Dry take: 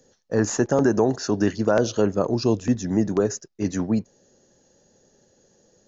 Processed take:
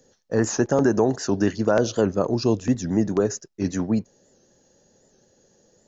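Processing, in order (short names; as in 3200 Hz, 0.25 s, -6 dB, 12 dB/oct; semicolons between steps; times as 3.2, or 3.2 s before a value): record warp 78 rpm, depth 100 cents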